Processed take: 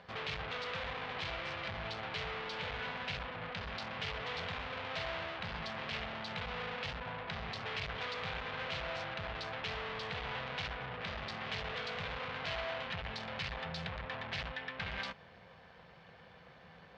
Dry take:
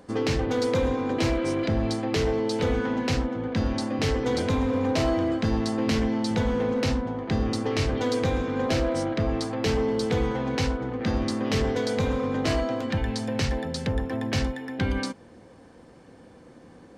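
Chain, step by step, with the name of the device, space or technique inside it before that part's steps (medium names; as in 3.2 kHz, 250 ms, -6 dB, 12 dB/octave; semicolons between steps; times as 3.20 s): scooped metal amplifier (valve stage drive 38 dB, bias 0.75; cabinet simulation 82–3600 Hz, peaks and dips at 100 Hz -3 dB, 170 Hz +8 dB, 410 Hz +4 dB, 660 Hz +4 dB; amplifier tone stack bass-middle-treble 10-0-10); trim +11 dB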